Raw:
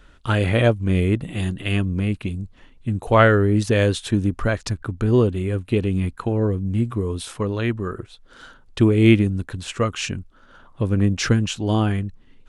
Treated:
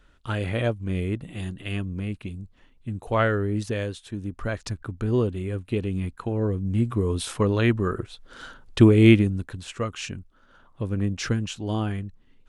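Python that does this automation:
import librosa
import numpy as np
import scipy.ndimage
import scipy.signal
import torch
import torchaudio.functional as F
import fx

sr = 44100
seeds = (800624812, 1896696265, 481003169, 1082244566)

y = fx.gain(x, sr, db=fx.line((3.66, -8.0), (4.04, -15.0), (4.58, -6.0), (6.21, -6.0), (7.31, 2.0), (8.81, 2.0), (9.71, -7.0)))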